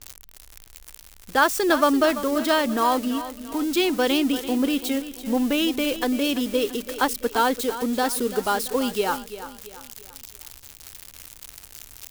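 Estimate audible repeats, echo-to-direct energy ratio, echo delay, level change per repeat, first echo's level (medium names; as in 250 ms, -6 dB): 3, -12.0 dB, 338 ms, -7.5 dB, -13.0 dB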